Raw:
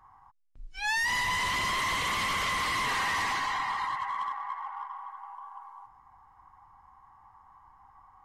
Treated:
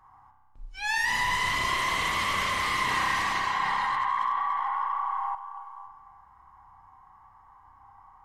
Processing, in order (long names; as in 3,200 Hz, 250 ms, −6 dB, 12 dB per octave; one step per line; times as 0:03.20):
spring reverb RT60 1.5 s, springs 31 ms, chirp 45 ms, DRR 2 dB
0:03.60–0:05.35: envelope flattener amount 70%